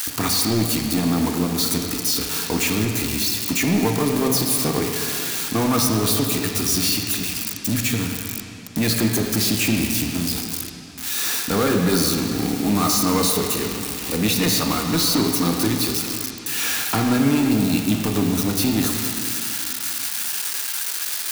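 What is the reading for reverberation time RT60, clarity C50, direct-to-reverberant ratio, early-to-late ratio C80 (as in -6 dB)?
2.6 s, 3.0 dB, 2.0 dB, 4.0 dB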